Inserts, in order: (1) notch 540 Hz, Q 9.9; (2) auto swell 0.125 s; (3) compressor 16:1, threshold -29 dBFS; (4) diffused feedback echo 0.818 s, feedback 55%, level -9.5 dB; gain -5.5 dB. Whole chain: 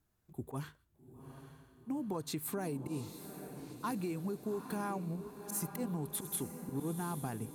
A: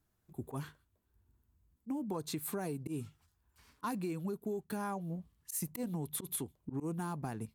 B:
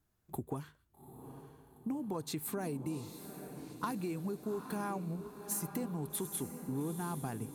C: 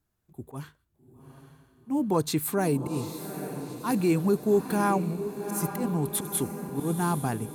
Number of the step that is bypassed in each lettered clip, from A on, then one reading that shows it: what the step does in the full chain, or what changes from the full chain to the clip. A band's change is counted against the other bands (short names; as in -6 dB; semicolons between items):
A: 4, echo-to-direct -8.0 dB to none; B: 2, momentary loudness spread change +1 LU; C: 3, mean gain reduction 9.0 dB